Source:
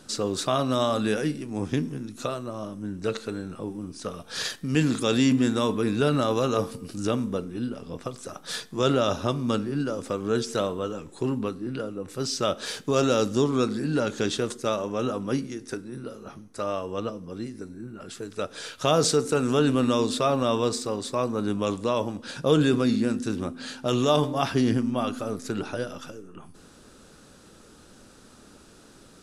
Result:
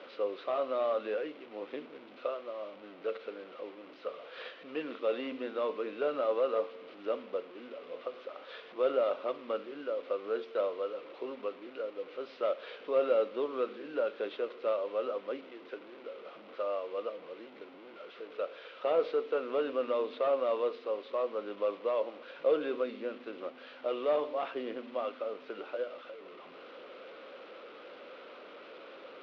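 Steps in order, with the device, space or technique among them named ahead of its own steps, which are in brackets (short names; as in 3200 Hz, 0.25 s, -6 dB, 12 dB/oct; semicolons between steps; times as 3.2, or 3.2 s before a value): digital answering machine (BPF 390–3000 Hz; delta modulation 32 kbps, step -36.5 dBFS; speaker cabinet 360–3200 Hz, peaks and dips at 530 Hz +8 dB, 850 Hz -6 dB, 1700 Hz -7 dB); gain -6 dB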